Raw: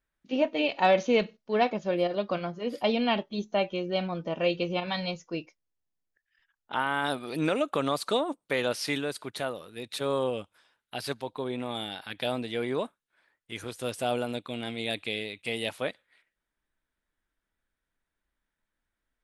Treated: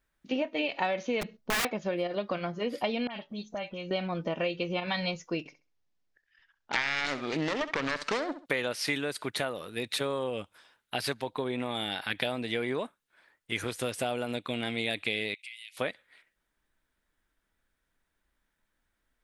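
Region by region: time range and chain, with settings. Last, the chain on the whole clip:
1.21–1.65 s: bass shelf 350 Hz +8.5 dB + integer overflow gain 22.5 dB + tape noise reduction on one side only decoder only
3.07–3.91 s: peaking EQ 370 Hz -8.5 dB 0.3 oct + compression 2.5:1, threshold -45 dBFS + phase dispersion highs, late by 49 ms, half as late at 2.2 kHz
5.39–8.46 s: self-modulated delay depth 0.61 ms + low-pass 6.2 kHz 24 dB/octave + flutter echo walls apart 11.3 m, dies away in 0.28 s
15.34–15.77 s: elliptic high-pass 2.1 kHz, stop band 50 dB + treble shelf 10 kHz -6.5 dB + compression 4:1, threshold -52 dBFS
whole clip: compression 6:1, threshold -34 dBFS; dynamic bell 2 kHz, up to +5 dB, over -56 dBFS, Q 1.7; trim +5.5 dB

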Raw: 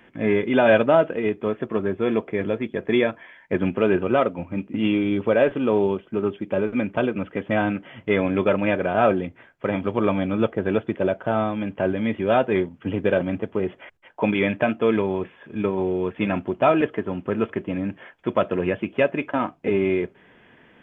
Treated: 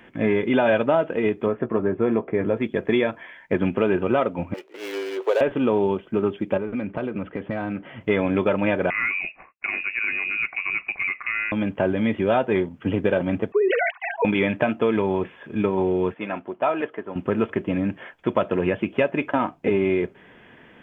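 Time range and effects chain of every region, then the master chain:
1.46–2.57 s: low-pass 1.7 kHz + doubling 17 ms -11.5 dB
4.54–5.41 s: median filter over 25 samples + elliptic high-pass 400 Hz + frequency shift -20 Hz
6.57–8.01 s: self-modulated delay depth 0.061 ms + compression 4:1, threshold -27 dBFS + distance through air 260 m
8.90–11.52 s: expander -48 dBFS + compression 2:1, threshold -31 dBFS + frequency inversion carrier 2.7 kHz
13.52–14.25 s: formants replaced by sine waves + comb 2.7 ms, depth 56% + decay stretcher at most 31 dB/s
16.14–17.16 s: high-pass 970 Hz 6 dB/octave + treble shelf 2.2 kHz -11.5 dB + tape noise reduction on one side only decoder only
whole clip: dynamic bell 890 Hz, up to +4 dB, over -41 dBFS, Q 5.9; compression 3:1, threshold -21 dBFS; trim +3.5 dB

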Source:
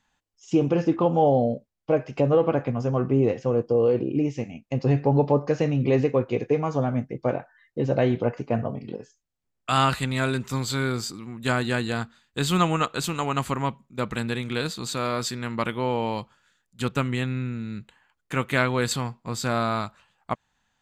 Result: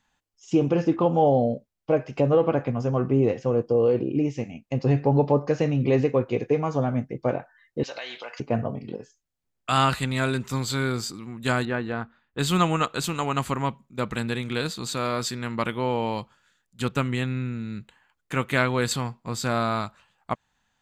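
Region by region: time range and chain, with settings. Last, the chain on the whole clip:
7.83–8.40 s: high-pass 1 kHz + peaking EQ 4.3 kHz +14.5 dB 1.8 oct + compression 4:1, threshold -32 dBFS
11.65–12.39 s: low-pass 1.8 kHz + peaking EQ 130 Hz -4.5 dB 1.6 oct
whole clip: none

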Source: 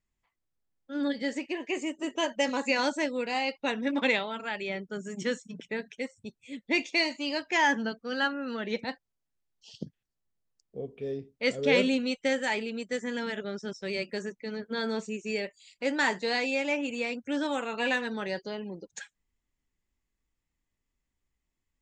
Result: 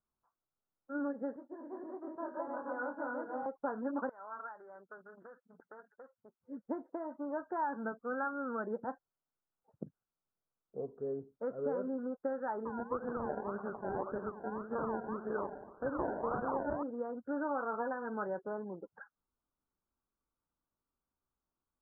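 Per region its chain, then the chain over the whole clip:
1.36–3.46 s: backward echo that repeats 159 ms, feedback 49%, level 0 dB + four-pole ladder low-pass 3.9 kHz, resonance 70% + doubling 24 ms -6.5 dB
4.09–6.41 s: compression 20:1, threshold -35 dBFS + band-pass filter 2.3 kHz, Q 0.52 + loudspeaker Doppler distortion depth 0.31 ms
12.65–16.83 s: two-band feedback delay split 890 Hz, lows 89 ms, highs 125 ms, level -11 dB + decimation with a swept rate 29×, swing 60% 1.8 Hz
whole clip: compression 6:1, threshold -29 dBFS; steep low-pass 1.5 kHz 96 dB/octave; tilt EQ +3 dB/octave; trim +1 dB

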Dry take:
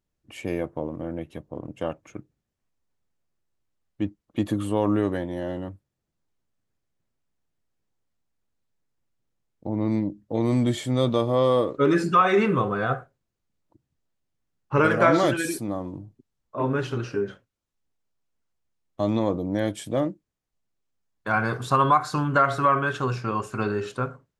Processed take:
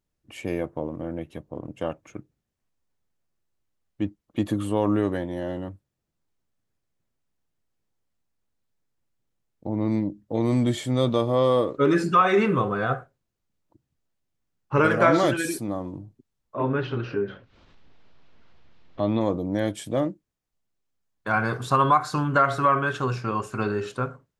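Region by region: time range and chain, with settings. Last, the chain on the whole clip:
16.56–19.21 s: low-pass 4.1 kHz 24 dB/octave + upward compressor, threshold -29 dBFS
whole clip: none

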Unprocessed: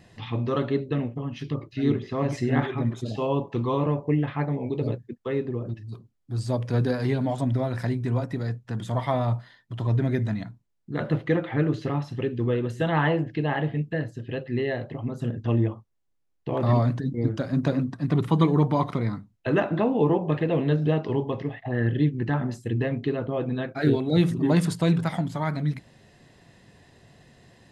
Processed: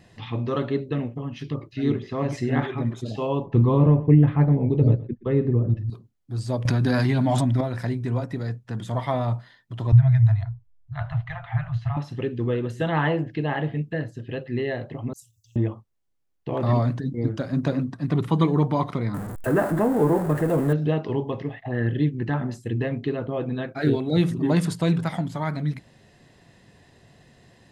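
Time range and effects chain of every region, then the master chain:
3.46–5.90 s: RIAA curve playback + delay 121 ms -18 dB
6.65–7.61 s: peaking EQ 460 Hz -14.5 dB 0.34 oct + level flattener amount 100%
9.92–11.97 s: Chebyshev band-stop 130–670 Hz, order 5 + RIAA curve playback
15.13–15.56 s: inverse Chebyshev band-stop 260–1600 Hz, stop band 70 dB + tilt EQ +4 dB/octave
19.14–20.73 s: jump at every zero crossing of -27 dBFS + high-order bell 3.8 kHz -14 dB
whole clip: none

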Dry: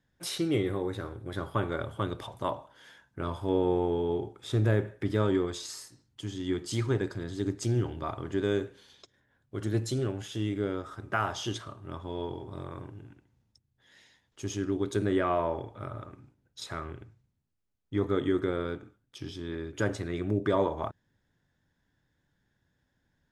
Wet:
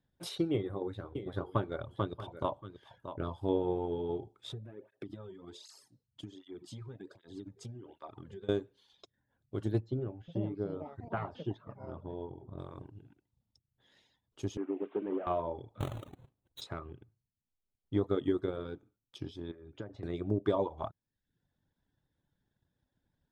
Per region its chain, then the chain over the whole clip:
0.52–3.38 s: tone controls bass 0 dB, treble -5 dB + delay 631 ms -10 dB
4.53–8.49 s: compression 5:1, threshold -36 dBFS + cancelling through-zero flanger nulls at 1.3 Hz, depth 3.7 ms
9.80–12.59 s: ever faster or slower copies 479 ms, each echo +7 st, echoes 2, each echo -6 dB + tape spacing loss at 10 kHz 39 dB
14.57–15.27 s: one-bit delta coder 16 kbps, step -42 dBFS + high-pass 250 Hz 24 dB/octave + distance through air 210 m
15.80–16.61 s: square wave that keeps the level + Butterworth band-stop 5 kHz, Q 2.2
19.51–20.03 s: compression 3:1, threshold -39 dBFS + distance through air 170 m
whole clip: reverb removal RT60 0.56 s; transient shaper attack +5 dB, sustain -1 dB; FFT filter 850 Hz 0 dB, 1.9 kHz -8 dB, 3.7 kHz -1 dB, 5.9 kHz -8 dB; trim -4.5 dB

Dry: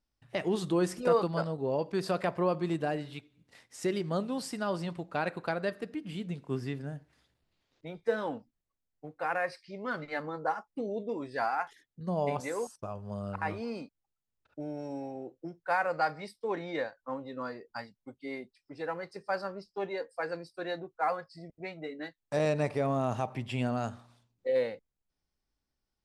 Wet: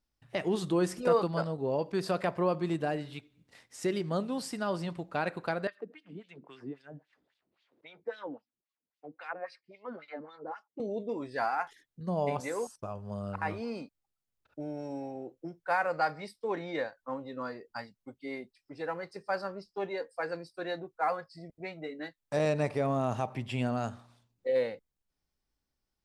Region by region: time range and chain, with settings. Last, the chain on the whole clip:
5.67–10.80 s: wah-wah 3.7 Hz 250–3800 Hz, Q 2 + three bands compressed up and down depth 40%
whole clip: none

